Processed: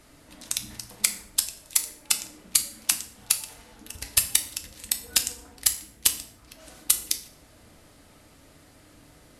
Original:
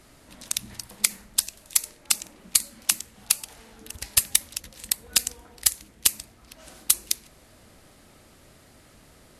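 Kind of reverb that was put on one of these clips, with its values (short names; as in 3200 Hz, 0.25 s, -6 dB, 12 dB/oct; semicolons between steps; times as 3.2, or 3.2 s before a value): FDN reverb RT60 0.56 s, low-frequency decay 1.3×, high-frequency decay 0.85×, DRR 6.5 dB; gain -1.5 dB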